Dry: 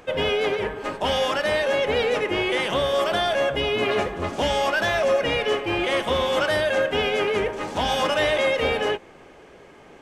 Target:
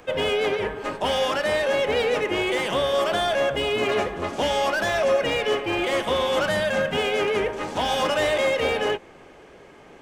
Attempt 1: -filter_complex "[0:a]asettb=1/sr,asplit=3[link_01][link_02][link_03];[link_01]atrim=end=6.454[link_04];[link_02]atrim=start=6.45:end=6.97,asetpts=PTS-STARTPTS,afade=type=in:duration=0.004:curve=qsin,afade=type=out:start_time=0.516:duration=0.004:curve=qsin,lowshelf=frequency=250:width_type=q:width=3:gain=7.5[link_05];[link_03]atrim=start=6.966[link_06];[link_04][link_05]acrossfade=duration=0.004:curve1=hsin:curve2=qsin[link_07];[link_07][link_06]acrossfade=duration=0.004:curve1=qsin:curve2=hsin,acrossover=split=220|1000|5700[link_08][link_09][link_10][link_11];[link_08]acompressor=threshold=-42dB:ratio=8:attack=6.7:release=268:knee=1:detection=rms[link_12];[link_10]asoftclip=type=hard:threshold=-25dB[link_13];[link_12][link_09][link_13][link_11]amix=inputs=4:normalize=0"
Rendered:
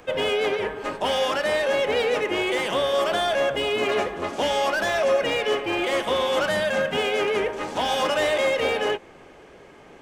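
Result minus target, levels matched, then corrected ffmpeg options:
downward compressor: peak gain reduction +6.5 dB
-filter_complex "[0:a]asettb=1/sr,asplit=3[link_01][link_02][link_03];[link_01]atrim=end=6.454[link_04];[link_02]atrim=start=6.45:end=6.97,asetpts=PTS-STARTPTS,afade=type=in:duration=0.004:curve=qsin,afade=type=out:start_time=0.516:duration=0.004:curve=qsin,lowshelf=frequency=250:width_type=q:width=3:gain=7.5[link_05];[link_03]atrim=start=6.966[link_06];[link_04][link_05]acrossfade=duration=0.004:curve1=hsin:curve2=qsin[link_07];[link_07][link_06]acrossfade=duration=0.004:curve1=qsin:curve2=hsin,acrossover=split=220|1000|5700[link_08][link_09][link_10][link_11];[link_08]acompressor=threshold=-34.5dB:ratio=8:attack=6.7:release=268:knee=1:detection=rms[link_12];[link_10]asoftclip=type=hard:threshold=-25dB[link_13];[link_12][link_09][link_13][link_11]amix=inputs=4:normalize=0"

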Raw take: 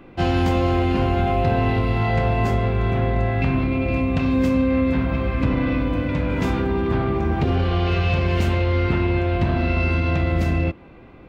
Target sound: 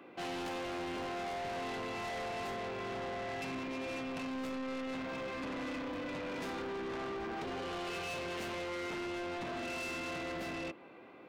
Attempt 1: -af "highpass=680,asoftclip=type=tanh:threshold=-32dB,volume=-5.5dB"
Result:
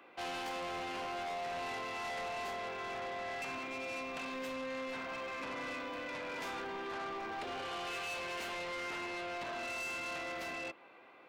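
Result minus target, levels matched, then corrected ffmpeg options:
250 Hz band −6.5 dB
-af "highpass=330,asoftclip=type=tanh:threshold=-32dB,volume=-5.5dB"

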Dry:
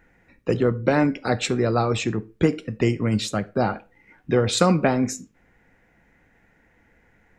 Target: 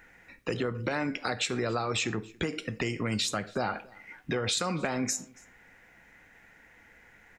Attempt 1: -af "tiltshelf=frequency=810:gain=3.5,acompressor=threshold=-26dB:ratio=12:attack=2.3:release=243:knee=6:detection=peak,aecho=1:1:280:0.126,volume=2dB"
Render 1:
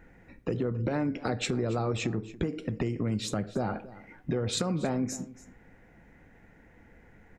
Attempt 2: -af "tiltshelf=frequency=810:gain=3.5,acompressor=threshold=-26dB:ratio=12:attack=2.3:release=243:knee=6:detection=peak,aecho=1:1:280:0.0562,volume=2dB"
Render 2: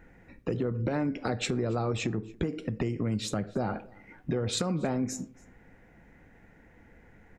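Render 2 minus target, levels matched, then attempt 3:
1,000 Hz band −3.0 dB
-af "tiltshelf=frequency=810:gain=-6,acompressor=threshold=-26dB:ratio=12:attack=2.3:release=243:knee=6:detection=peak,aecho=1:1:280:0.0562,volume=2dB"

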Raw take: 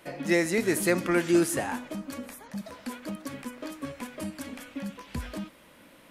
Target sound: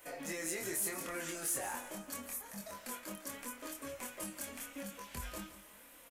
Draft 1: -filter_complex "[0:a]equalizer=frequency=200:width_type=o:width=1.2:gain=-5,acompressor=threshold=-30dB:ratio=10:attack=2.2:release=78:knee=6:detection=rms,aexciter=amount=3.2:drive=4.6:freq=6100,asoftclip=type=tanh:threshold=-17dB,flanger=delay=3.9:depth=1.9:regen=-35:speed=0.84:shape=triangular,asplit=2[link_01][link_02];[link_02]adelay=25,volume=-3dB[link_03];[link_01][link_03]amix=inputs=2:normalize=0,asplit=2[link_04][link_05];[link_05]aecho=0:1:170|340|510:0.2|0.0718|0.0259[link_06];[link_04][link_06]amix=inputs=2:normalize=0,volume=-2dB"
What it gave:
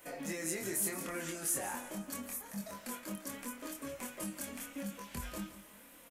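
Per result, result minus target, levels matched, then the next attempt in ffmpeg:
soft clipping: distortion −12 dB; 250 Hz band +3.5 dB
-filter_complex "[0:a]equalizer=frequency=200:width_type=o:width=1.2:gain=-5,acompressor=threshold=-30dB:ratio=10:attack=2.2:release=78:knee=6:detection=rms,aexciter=amount=3.2:drive=4.6:freq=6100,asoftclip=type=tanh:threshold=-25dB,flanger=delay=3.9:depth=1.9:regen=-35:speed=0.84:shape=triangular,asplit=2[link_01][link_02];[link_02]adelay=25,volume=-3dB[link_03];[link_01][link_03]amix=inputs=2:normalize=0,asplit=2[link_04][link_05];[link_05]aecho=0:1:170|340|510:0.2|0.0718|0.0259[link_06];[link_04][link_06]amix=inputs=2:normalize=0,volume=-2dB"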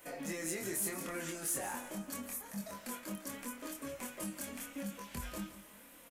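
250 Hz band +4.0 dB
-filter_complex "[0:a]equalizer=frequency=200:width_type=o:width=1.2:gain=-12.5,acompressor=threshold=-30dB:ratio=10:attack=2.2:release=78:knee=6:detection=rms,aexciter=amount=3.2:drive=4.6:freq=6100,asoftclip=type=tanh:threshold=-25dB,flanger=delay=3.9:depth=1.9:regen=-35:speed=0.84:shape=triangular,asplit=2[link_01][link_02];[link_02]adelay=25,volume=-3dB[link_03];[link_01][link_03]amix=inputs=2:normalize=0,asplit=2[link_04][link_05];[link_05]aecho=0:1:170|340|510:0.2|0.0718|0.0259[link_06];[link_04][link_06]amix=inputs=2:normalize=0,volume=-2dB"

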